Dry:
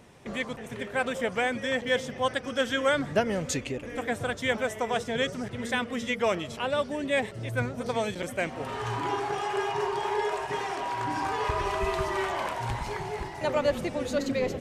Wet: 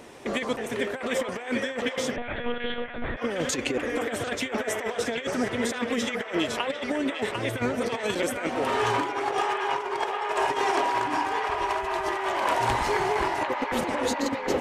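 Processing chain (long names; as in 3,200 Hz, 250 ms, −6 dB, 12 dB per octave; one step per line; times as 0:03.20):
low shelf with overshoot 220 Hz −8 dB, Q 1.5
compressor whose output falls as the input rises −32 dBFS, ratio −0.5
on a send: delay with a band-pass on its return 748 ms, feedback 65%, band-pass 1,500 Hz, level −3.5 dB
0:02.16–0:03.17: on the sum: one-pitch LPC vocoder at 8 kHz 240 Hz
level +4.5 dB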